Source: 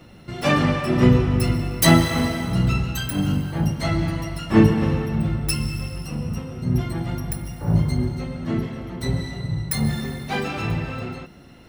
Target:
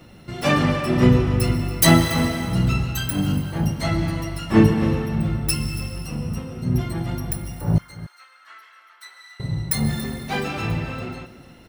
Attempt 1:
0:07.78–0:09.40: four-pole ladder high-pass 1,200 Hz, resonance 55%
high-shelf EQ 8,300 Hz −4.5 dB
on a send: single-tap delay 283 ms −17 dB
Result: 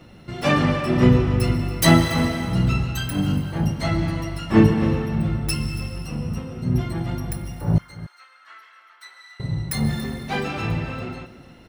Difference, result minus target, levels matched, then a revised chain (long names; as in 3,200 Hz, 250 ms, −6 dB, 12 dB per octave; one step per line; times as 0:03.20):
8,000 Hz band −4.0 dB
0:07.78–0:09.40: four-pole ladder high-pass 1,200 Hz, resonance 55%
high-shelf EQ 8,300 Hz +4 dB
on a send: single-tap delay 283 ms −17 dB